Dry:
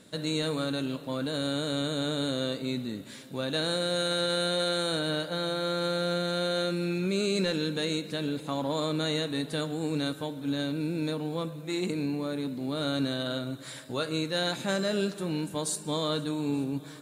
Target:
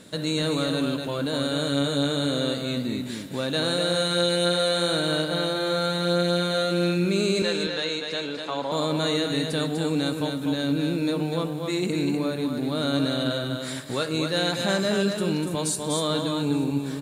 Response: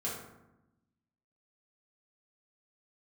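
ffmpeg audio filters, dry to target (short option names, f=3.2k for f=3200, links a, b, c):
-filter_complex "[0:a]asettb=1/sr,asplit=3[a][b][c];[a]atrim=end=7.424[d];[b]atrim=start=7.42:end=8.72,asetpts=PTS-STARTPTS,afade=t=in:d=0.004:c=qsin,afade=t=out:st=1.296:d=0.004:c=qsin,acrossover=split=440 6600:gain=0.2 1 0.112[e][f][g];[e][f][g]amix=inputs=3:normalize=0[h];[c]atrim=start=8.716[i];[d][h]acrossfade=d=0.004:c1=hsin:c2=qsin[j];[j][i]acrossfade=d=0.004:c1=qsin:c2=hsin,asplit=2[k][l];[l]alimiter=level_in=5dB:limit=-24dB:level=0:latency=1:release=105,volume=-5dB,volume=-3dB[m];[k][m]amix=inputs=2:normalize=0,aecho=1:1:247:0.562,volume=2dB"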